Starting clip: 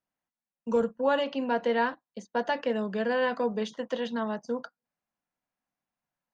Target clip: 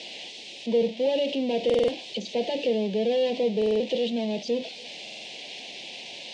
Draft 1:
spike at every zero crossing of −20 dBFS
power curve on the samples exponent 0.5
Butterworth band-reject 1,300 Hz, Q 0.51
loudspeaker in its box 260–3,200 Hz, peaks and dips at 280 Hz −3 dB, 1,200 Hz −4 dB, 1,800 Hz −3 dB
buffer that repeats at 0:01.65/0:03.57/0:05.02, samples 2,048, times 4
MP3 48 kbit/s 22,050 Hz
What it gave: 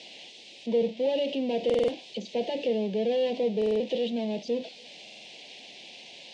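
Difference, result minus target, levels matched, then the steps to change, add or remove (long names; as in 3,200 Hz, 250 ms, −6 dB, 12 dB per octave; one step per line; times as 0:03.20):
spike at every zero crossing: distortion −9 dB
change: spike at every zero crossing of −10.5 dBFS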